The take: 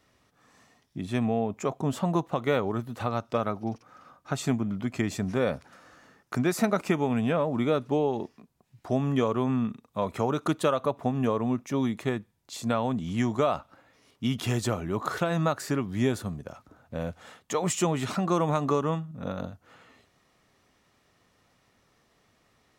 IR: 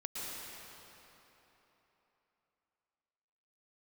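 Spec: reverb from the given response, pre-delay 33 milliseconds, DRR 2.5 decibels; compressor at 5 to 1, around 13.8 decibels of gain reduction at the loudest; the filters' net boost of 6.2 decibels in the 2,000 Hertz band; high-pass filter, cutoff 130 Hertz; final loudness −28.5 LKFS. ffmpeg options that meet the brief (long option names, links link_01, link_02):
-filter_complex "[0:a]highpass=130,equalizer=frequency=2000:width_type=o:gain=8,acompressor=threshold=-35dB:ratio=5,asplit=2[link_01][link_02];[1:a]atrim=start_sample=2205,adelay=33[link_03];[link_02][link_03]afir=irnorm=-1:irlink=0,volume=-4.5dB[link_04];[link_01][link_04]amix=inputs=2:normalize=0,volume=9dB"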